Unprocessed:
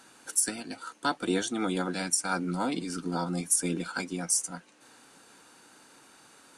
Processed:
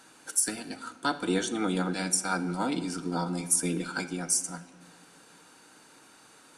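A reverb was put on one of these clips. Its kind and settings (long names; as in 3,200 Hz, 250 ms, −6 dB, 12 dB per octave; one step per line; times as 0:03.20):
rectangular room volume 1,600 cubic metres, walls mixed, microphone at 0.52 metres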